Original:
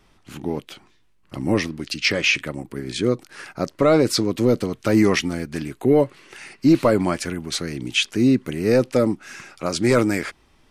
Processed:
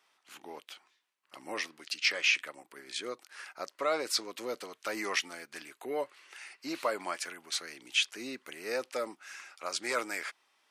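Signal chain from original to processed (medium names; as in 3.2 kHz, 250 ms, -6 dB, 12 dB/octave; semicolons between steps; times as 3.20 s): high-pass 810 Hz 12 dB/octave; trim -7.5 dB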